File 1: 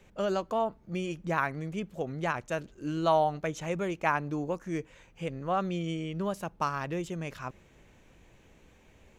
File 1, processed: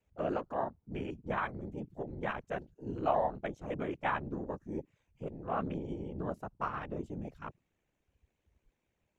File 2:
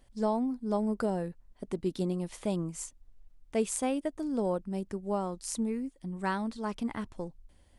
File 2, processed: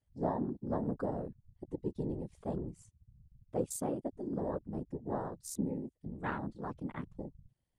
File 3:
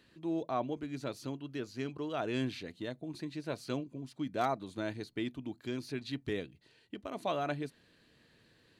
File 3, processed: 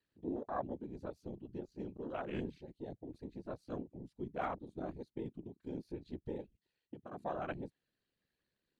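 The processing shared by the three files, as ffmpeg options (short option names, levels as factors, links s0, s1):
-af "aeval=exprs='val(0)*sin(2*PI*35*n/s)':c=same,afftfilt=real='hypot(re,im)*cos(2*PI*random(0))':imag='hypot(re,im)*sin(2*PI*random(1))':win_size=512:overlap=0.75,afwtdn=0.00316,volume=1.5"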